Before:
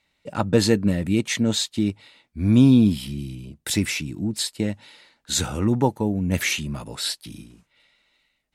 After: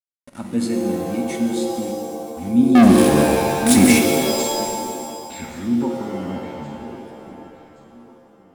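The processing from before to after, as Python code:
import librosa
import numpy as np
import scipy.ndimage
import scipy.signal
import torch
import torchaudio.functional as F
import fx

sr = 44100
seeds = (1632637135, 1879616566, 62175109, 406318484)

p1 = fx.small_body(x, sr, hz=(240.0, 2200.0), ring_ms=95, db=17)
p2 = np.where(np.abs(p1) >= 10.0 ** (-27.5 / 20.0), p1, 0.0)
p3 = fx.filter_sweep_lowpass(p2, sr, from_hz=10000.0, to_hz=390.0, start_s=4.08, end_s=6.97, q=4.4)
p4 = p3 + fx.echo_feedback(p3, sr, ms=1123, feedback_pct=39, wet_db=-18.0, dry=0)
p5 = fx.leveller(p4, sr, passes=5, at=(2.75, 3.99))
p6 = fx.rev_shimmer(p5, sr, seeds[0], rt60_s=2.0, semitones=7, shimmer_db=-2, drr_db=4.0)
y = p6 * 10.0 ** (-13.5 / 20.0)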